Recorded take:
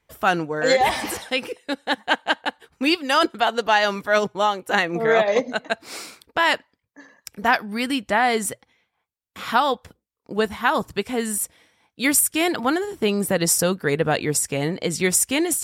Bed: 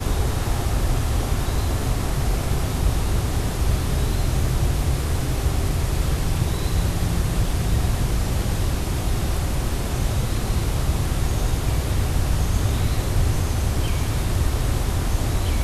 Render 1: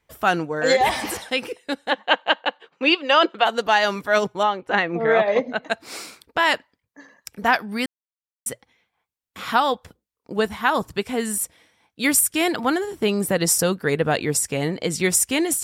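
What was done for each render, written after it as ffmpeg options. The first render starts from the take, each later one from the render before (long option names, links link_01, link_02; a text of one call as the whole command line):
ffmpeg -i in.wav -filter_complex "[0:a]asplit=3[link_01][link_02][link_03];[link_01]afade=type=out:start_time=1.9:duration=0.02[link_04];[link_02]highpass=frequency=190:width=0.5412,highpass=frequency=190:width=1.3066,equalizer=frequency=240:width_type=q:width=4:gain=-7,equalizer=frequency=550:width_type=q:width=4:gain=7,equalizer=frequency=1100:width_type=q:width=4:gain=4,equalizer=frequency=2800:width_type=q:width=4:gain=6,equalizer=frequency=5300:width_type=q:width=4:gain=-8,lowpass=frequency=5600:width=0.5412,lowpass=frequency=5600:width=1.3066,afade=type=in:start_time=1.9:duration=0.02,afade=type=out:start_time=3.44:duration=0.02[link_05];[link_03]afade=type=in:start_time=3.44:duration=0.02[link_06];[link_04][link_05][link_06]amix=inputs=3:normalize=0,asettb=1/sr,asplit=3[link_07][link_08][link_09];[link_07]atrim=end=4.434[link_10];[link_08]atrim=start=4.43:end=5.63,asetpts=PTS-STARTPTS,afade=type=in:duration=0.004:curve=qsin,afade=type=out:start_time=1.196:duration=0.004:curve=qsin,lowpass=3200[link_11];[link_09]atrim=start=5.626[link_12];[link_10][link_11]acrossfade=duration=0.004:curve1=hsin:curve2=qsin[link_13];[link_13][link_12]acrossfade=duration=0.004:curve1=qsin:curve2=hsin,asplit=3[link_14][link_15][link_16];[link_14]atrim=end=7.86,asetpts=PTS-STARTPTS,afade=type=out:start_time=7.856:duration=0.004:curve=hsin[link_17];[link_15]atrim=start=7.86:end=8.46,asetpts=PTS-STARTPTS,volume=0[link_18];[link_16]atrim=start=8.46,asetpts=PTS-STARTPTS,afade=type=in:duration=0.004:curve=hsin[link_19];[link_17][link_18][link_19]concat=n=3:v=0:a=1" out.wav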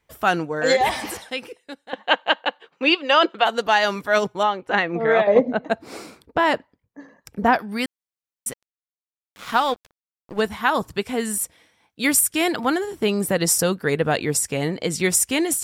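ffmpeg -i in.wav -filter_complex "[0:a]asettb=1/sr,asplit=3[link_01][link_02][link_03];[link_01]atrim=end=5.274[link_04];[link_02]atrim=start=5.27:end=7.59,asetpts=PTS-STARTPTS,afade=type=in:duration=0.004:curve=qsin,afade=type=out:start_time=2.316:duration=0.004:curve=qsin,tiltshelf=frequency=1100:gain=8[link_05];[link_03]atrim=start=7.586[link_06];[link_04][link_05]acrossfade=duration=0.004:curve1=hsin:curve2=qsin[link_07];[link_07][link_06]acrossfade=duration=0.004:curve1=qsin:curve2=hsin,asettb=1/sr,asplit=3[link_08][link_09][link_10];[link_08]atrim=end=8.514[link_11];[link_09]atrim=start=8.51:end=10.41,asetpts=PTS-STARTPTS,afade=type=in:duration=0.004:curve=qsin,afade=type=out:start_time=1.896:duration=0.004:curve=qsin,aeval=exprs='sgn(val(0))*max(abs(val(0))-0.0158,0)':channel_layout=same[link_12];[link_10]atrim=start=10.406[link_13];[link_11][link_12]acrossfade=duration=0.004:curve1=hsin:curve2=qsin[link_14];[link_14][link_13]acrossfade=duration=0.004:curve1=qsin:curve2=hsin,asplit=2[link_15][link_16];[link_15]atrim=end=1.93,asetpts=PTS-STARTPTS,afade=type=out:start_time=0.69:duration=1.24:silence=0.158489[link_17];[link_16]atrim=start=1.93,asetpts=PTS-STARTPTS,afade=type=in:duration=0.004:curve=hsin:silence=0.158489[link_18];[link_17][link_18]concat=n=2:v=0:a=1" out.wav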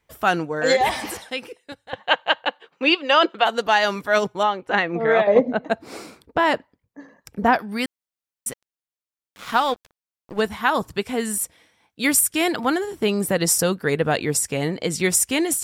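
ffmpeg -i in.wav -filter_complex "[0:a]asettb=1/sr,asplit=3[link_01][link_02][link_03];[link_01]atrim=end=1.724[link_04];[link_02]atrim=start=1.72:end=2.47,asetpts=PTS-STARTPTS,afade=type=in:duration=0.004:curve=qsin,afade=type=out:start_time=0.746:duration=0.004:curve=qsin,lowshelf=frequency=160:width_type=q:width=3:gain=12.5[link_05];[link_03]atrim=start=2.466[link_06];[link_04][link_05]acrossfade=duration=0.004:curve1=hsin:curve2=qsin[link_07];[link_07][link_06]acrossfade=duration=0.004:curve1=qsin:curve2=hsin" out.wav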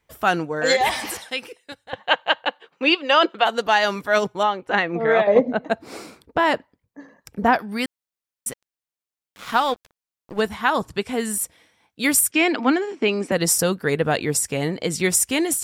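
ffmpeg -i in.wav -filter_complex "[0:a]asettb=1/sr,asplit=3[link_01][link_02][link_03];[link_01]atrim=end=0.654[link_04];[link_02]atrim=start=0.65:end=1.84,asetpts=PTS-STARTPTS,afade=type=in:duration=0.004:curve=qsin,afade=type=out:start_time=1.186:duration=0.004:curve=qsin,tiltshelf=frequency=970:gain=-3[link_05];[link_03]atrim=start=1.836[link_06];[link_04][link_05]acrossfade=duration=0.004:curve1=hsin:curve2=qsin[link_07];[link_07][link_06]acrossfade=duration=0.004:curve1=qsin:curve2=hsin,asettb=1/sr,asplit=3[link_08][link_09][link_10];[link_08]atrim=end=10.544[link_11];[link_09]atrim=start=10.54:end=11.13,asetpts=PTS-STARTPTS,afade=type=in:duration=0.004:curve=qsin,afade=type=out:start_time=0.586:duration=0.004:curve=qsin,lowpass=11000[link_12];[link_10]atrim=start=11.126[link_13];[link_11][link_12]acrossfade=duration=0.004:curve1=hsin:curve2=qsin[link_14];[link_14][link_13]acrossfade=duration=0.004:curve1=qsin:curve2=hsin,asettb=1/sr,asplit=3[link_15][link_16][link_17];[link_15]atrim=end=12.314[link_18];[link_16]atrim=start=12.31:end=13.32,asetpts=PTS-STARTPTS,afade=type=in:duration=0.004:curve=qsin,afade=type=out:start_time=1.006:duration=0.004:curve=qsin,highpass=frequency=230:width=0.5412,highpass=frequency=230:width=1.3066,equalizer=frequency=260:width_type=q:width=4:gain=9,equalizer=frequency=2400:width_type=q:width=4:gain=8,equalizer=frequency=3700:width_type=q:width=4:gain=-4,lowpass=frequency=6200:width=0.5412,lowpass=frequency=6200:width=1.3066[link_19];[link_17]atrim=start=13.316[link_20];[link_18][link_19]acrossfade=duration=0.004:curve1=hsin:curve2=qsin[link_21];[link_21][link_20]acrossfade=duration=0.004:curve1=qsin:curve2=hsin" out.wav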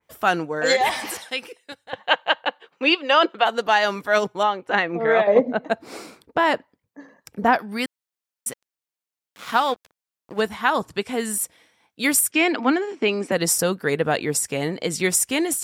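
ffmpeg -i in.wav -af "highpass=frequency=160:poles=1,adynamicequalizer=threshold=0.0316:dfrequency=2500:dqfactor=0.7:tfrequency=2500:tqfactor=0.7:attack=5:release=100:ratio=0.375:range=2:mode=cutabove:tftype=highshelf" out.wav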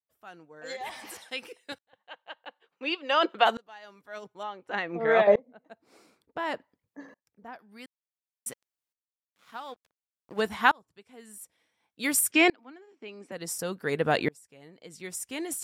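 ffmpeg -i in.wav -af "aeval=exprs='val(0)*pow(10,-33*if(lt(mod(-0.56*n/s,1),2*abs(-0.56)/1000),1-mod(-0.56*n/s,1)/(2*abs(-0.56)/1000),(mod(-0.56*n/s,1)-2*abs(-0.56)/1000)/(1-2*abs(-0.56)/1000))/20)':channel_layout=same" out.wav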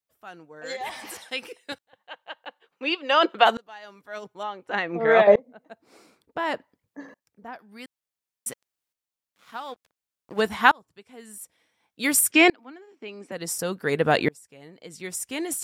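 ffmpeg -i in.wav -af "volume=4.5dB" out.wav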